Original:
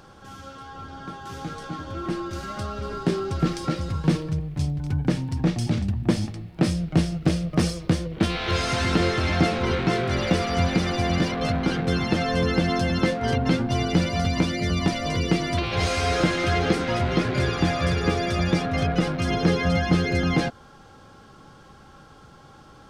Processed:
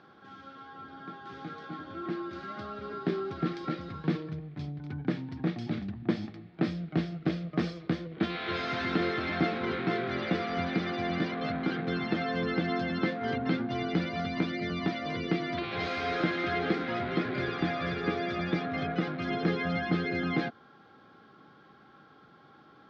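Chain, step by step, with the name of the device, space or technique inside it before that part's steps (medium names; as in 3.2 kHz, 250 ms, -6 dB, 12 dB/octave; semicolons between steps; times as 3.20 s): kitchen radio (cabinet simulation 210–3700 Hz, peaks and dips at 540 Hz -7 dB, 930 Hz -7 dB, 2.8 kHz -7 dB); trim -4 dB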